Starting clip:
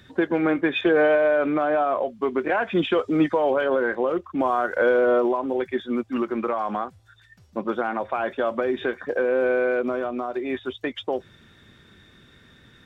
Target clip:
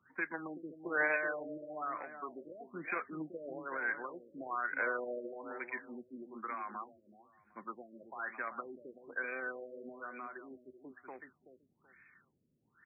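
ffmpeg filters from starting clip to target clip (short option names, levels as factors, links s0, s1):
-filter_complex "[0:a]equalizer=f=150:w=5.9:g=5,acrossover=split=350|950[s0][s1][s2];[s1]acrusher=bits=2:mix=0:aa=0.5[s3];[s0][s3][s2]amix=inputs=3:normalize=0,aderivative,asplit=2[s4][s5];[s5]adelay=378,lowpass=f=970:p=1,volume=0.398,asplit=2[s6][s7];[s7]adelay=378,lowpass=f=970:p=1,volume=0.24,asplit=2[s8][s9];[s9]adelay=378,lowpass=f=970:p=1,volume=0.24[s10];[s4][s6][s8][s10]amix=inputs=4:normalize=0,afftfilt=real='re*lt(b*sr/1024,610*pow(2600/610,0.5+0.5*sin(2*PI*1.1*pts/sr)))':imag='im*lt(b*sr/1024,610*pow(2600/610,0.5+0.5*sin(2*PI*1.1*pts/sr)))':win_size=1024:overlap=0.75,volume=2.51"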